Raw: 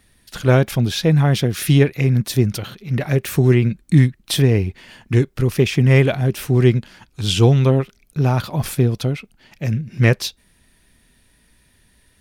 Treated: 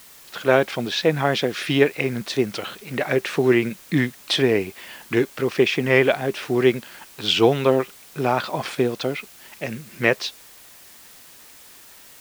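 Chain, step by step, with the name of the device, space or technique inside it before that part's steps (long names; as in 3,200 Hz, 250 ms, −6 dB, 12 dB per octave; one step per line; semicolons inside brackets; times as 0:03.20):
dictaphone (band-pass filter 380–3,900 Hz; automatic gain control gain up to 3 dB; tape wow and flutter; white noise bed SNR 24 dB)
level +1 dB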